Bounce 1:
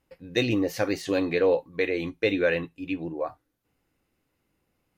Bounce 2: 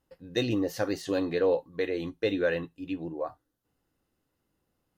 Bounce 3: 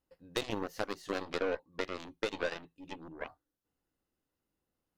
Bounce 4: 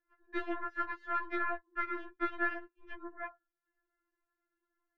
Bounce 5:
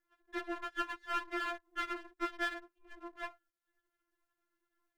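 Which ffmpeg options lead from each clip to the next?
-af "equalizer=f=2300:t=o:w=0.27:g=-12,volume=0.708"
-af "aeval=exprs='0.2*(cos(1*acos(clip(val(0)/0.2,-1,1)))-cos(1*PI/2))+0.0178*(cos(4*acos(clip(val(0)/0.2,-1,1)))-cos(4*PI/2))+0.0398*(cos(7*acos(clip(val(0)/0.2,-1,1)))-cos(7*PI/2))':c=same,equalizer=f=120:t=o:w=0.77:g=-4,acompressor=threshold=0.0251:ratio=3"
-af "lowpass=f=1600:t=q:w=8.3,afftfilt=real='re*4*eq(mod(b,16),0)':imag='im*4*eq(mod(b,16),0)':win_size=2048:overlap=0.75"
-af "aeval=exprs='if(lt(val(0),0),0.251*val(0),val(0))':c=same,volume=1.5"

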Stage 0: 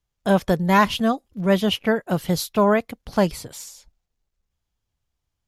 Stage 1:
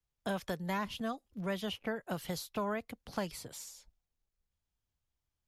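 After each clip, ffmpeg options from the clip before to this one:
-filter_complex "[0:a]acrossover=split=100|500|1200[s0][s1][s2][s3];[s0]acompressor=threshold=0.00398:ratio=4[s4];[s1]acompressor=threshold=0.0282:ratio=4[s5];[s2]acompressor=threshold=0.0224:ratio=4[s6];[s3]acompressor=threshold=0.0224:ratio=4[s7];[s4][s5][s6][s7]amix=inputs=4:normalize=0,volume=0.376"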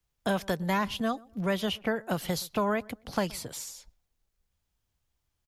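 -filter_complex "[0:a]asplit=2[s0][s1];[s1]adelay=122,lowpass=f=1200:p=1,volume=0.0708,asplit=2[s2][s3];[s3]adelay=122,lowpass=f=1200:p=1,volume=0.33[s4];[s0][s2][s4]amix=inputs=3:normalize=0,volume=2.37"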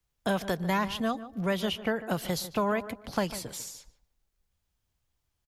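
-filter_complex "[0:a]asplit=2[s0][s1];[s1]adelay=148,lowpass=f=1900:p=1,volume=0.211,asplit=2[s2][s3];[s3]adelay=148,lowpass=f=1900:p=1,volume=0.27,asplit=2[s4][s5];[s5]adelay=148,lowpass=f=1900:p=1,volume=0.27[s6];[s0][s2][s4][s6]amix=inputs=4:normalize=0"

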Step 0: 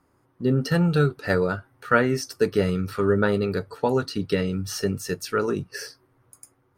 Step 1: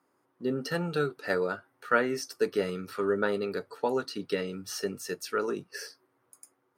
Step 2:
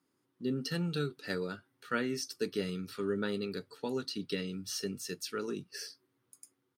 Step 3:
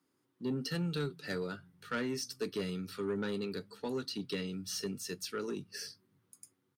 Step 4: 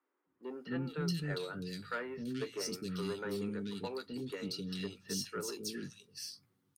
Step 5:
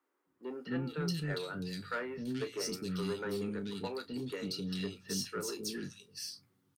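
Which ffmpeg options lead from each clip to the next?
-af "highpass=270,volume=0.562"
-af "firequalizer=gain_entry='entry(210,0);entry(620,-14);entry(3400,2);entry(6100,-1);entry(13000,-3)':delay=0.05:min_phase=1"
-filter_complex "[0:a]acrossover=split=130[s0][s1];[s0]aecho=1:1:279|558|837|1116|1395|1674:0.282|0.152|0.0822|0.0444|0.024|0.0129[s2];[s1]asoftclip=type=tanh:threshold=0.0398[s3];[s2][s3]amix=inputs=2:normalize=0"
-filter_complex "[0:a]acrossover=split=350|2500[s0][s1][s2];[s0]adelay=260[s3];[s2]adelay=430[s4];[s3][s1][s4]amix=inputs=3:normalize=0"
-filter_complex "[0:a]asplit=2[s0][s1];[s1]asoftclip=type=tanh:threshold=0.0106,volume=0.316[s2];[s0][s2]amix=inputs=2:normalize=0,asplit=2[s3][s4];[s4]adelay=32,volume=0.211[s5];[s3][s5]amix=inputs=2:normalize=0"

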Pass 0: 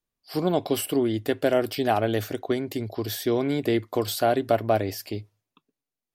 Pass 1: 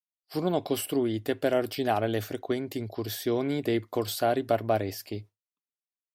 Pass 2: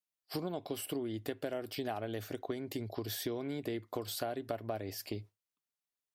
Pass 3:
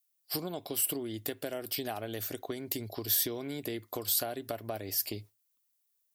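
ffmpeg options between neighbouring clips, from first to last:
-af "agate=range=0.0224:threshold=0.0126:ratio=3:detection=peak,volume=0.668"
-af "acompressor=threshold=0.0158:ratio=6,volume=1.12"
-af "aemphasis=mode=production:type=75kf"

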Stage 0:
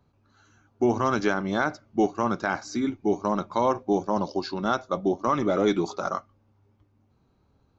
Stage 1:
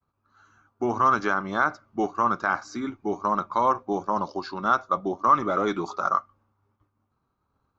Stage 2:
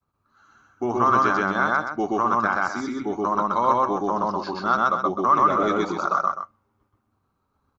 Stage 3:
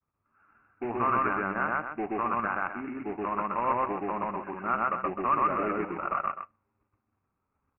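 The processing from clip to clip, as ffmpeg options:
-af "agate=range=0.0224:threshold=0.00112:ratio=3:detection=peak,equalizer=f=1200:t=o:w=0.86:g=13.5,volume=0.562"
-af "aecho=1:1:125.4|256.6:1|0.355"
-af "aresample=11025,acrusher=bits=2:mode=log:mix=0:aa=0.000001,aresample=44100,asuperstop=centerf=4300:order=20:qfactor=1.1,volume=0.398"

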